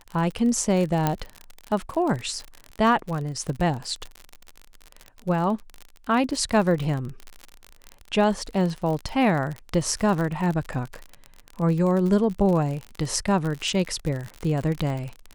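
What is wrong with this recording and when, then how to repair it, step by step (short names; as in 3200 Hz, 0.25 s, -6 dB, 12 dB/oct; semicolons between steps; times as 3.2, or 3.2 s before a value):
crackle 50/s -28 dBFS
1.07 pop -8 dBFS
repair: de-click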